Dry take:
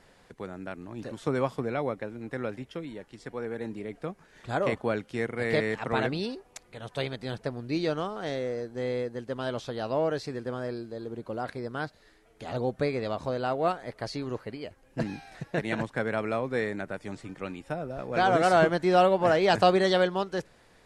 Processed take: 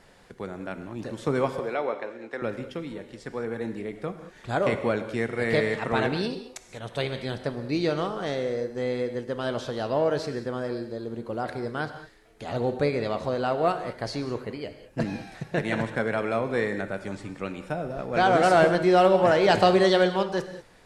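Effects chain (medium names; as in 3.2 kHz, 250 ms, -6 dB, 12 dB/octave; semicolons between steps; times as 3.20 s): 1.59–2.42 s: three-band isolator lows -22 dB, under 310 Hz, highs -15 dB, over 7.3 kHz; in parallel at -8 dB: saturation -18.5 dBFS, distortion -14 dB; on the sum: gated-style reverb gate 230 ms flat, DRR 8.5 dB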